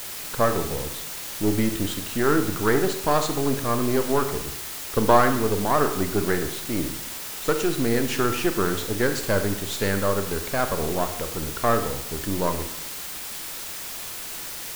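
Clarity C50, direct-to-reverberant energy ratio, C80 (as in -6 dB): 9.5 dB, 7.5 dB, 12.0 dB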